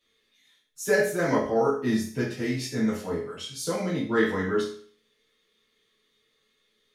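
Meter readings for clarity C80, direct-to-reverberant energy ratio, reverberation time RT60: 9.0 dB, -9.5 dB, 0.50 s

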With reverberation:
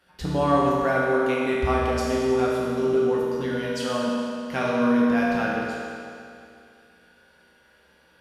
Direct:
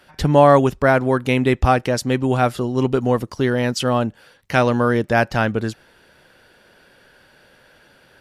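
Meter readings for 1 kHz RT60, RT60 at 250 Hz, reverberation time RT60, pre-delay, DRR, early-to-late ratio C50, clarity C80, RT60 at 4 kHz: 2.5 s, 2.5 s, 2.5 s, 4 ms, -6.0 dB, -2.0 dB, -0.5 dB, 2.4 s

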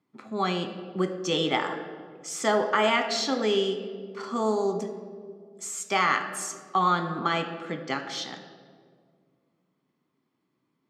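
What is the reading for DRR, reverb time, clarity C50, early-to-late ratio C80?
6.0 dB, 1.9 s, 9.0 dB, 10.5 dB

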